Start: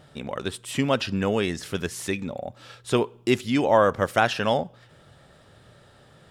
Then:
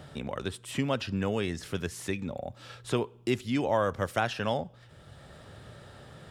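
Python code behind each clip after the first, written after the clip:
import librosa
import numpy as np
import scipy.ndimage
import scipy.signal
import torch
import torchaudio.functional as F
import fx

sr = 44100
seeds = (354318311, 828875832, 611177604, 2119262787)

y = fx.peak_eq(x, sr, hz=66.0, db=7.5, octaves=1.7)
y = fx.band_squash(y, sr, depth_pct=40)
y = F.gain(torch.from_numpy(y), -7.0).numpy()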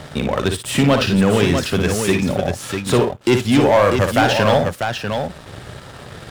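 y = fx.leveller(x, sr, passes=3)
y = fx.echo_multitap(y, sr, ms=(57, 645), db=(-6.5, -6.0))
y = F.gain(torch.from_numpy(y), 4.5).numpy()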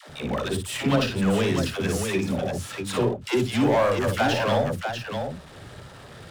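y = fx.dispersion(x, sr, late='lows', ms=95.0, hz=440.0)
y = F.gain(torch.from_numpy(y), -7.5).numpy()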